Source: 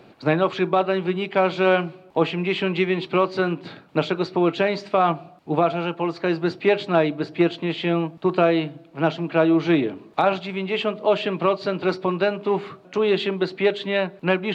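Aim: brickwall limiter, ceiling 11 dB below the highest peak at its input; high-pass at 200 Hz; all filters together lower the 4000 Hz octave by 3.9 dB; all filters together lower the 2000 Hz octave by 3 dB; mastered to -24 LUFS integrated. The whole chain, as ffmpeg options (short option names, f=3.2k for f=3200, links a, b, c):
-af "highpass=200,equalizer=f=2k:t=o:g=-3,equalizer=f=4k:t=o:g=-4,volume=4dB,alimiter=limit=-13.5dB:level=0:latency=1"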